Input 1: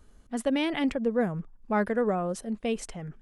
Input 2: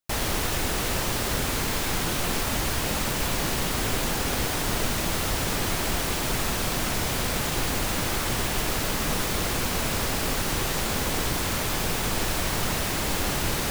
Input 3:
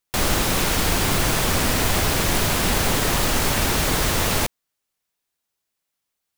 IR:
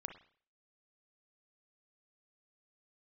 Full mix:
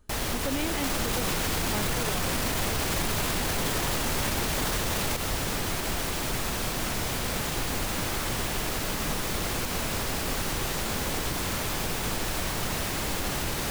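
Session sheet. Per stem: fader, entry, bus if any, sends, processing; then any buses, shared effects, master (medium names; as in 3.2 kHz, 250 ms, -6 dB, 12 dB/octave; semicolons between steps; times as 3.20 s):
-3.5 dB, 0.00 s, no send, none
-6.0 dB, 0.00 s, send -3.5 dB, none
-1.0 dB, 0.70 s, no send, none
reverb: on, RT60 0.50 s, pre-delay 32 ms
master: peak limiter -18.5 dBFS, peak gain reduction 11 dB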